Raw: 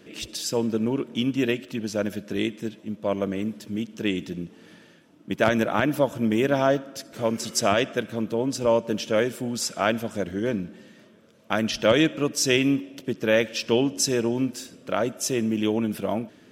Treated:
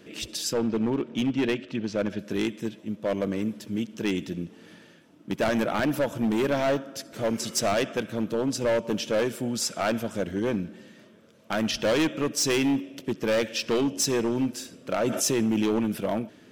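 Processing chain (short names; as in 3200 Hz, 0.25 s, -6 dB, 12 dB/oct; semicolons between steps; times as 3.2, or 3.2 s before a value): 0.53–2.19 LPF 4300 Hz 12 dB/oct; hard clip -20 dBFS, distortion -9 dB; 15.02–15.79 fast leveller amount 70%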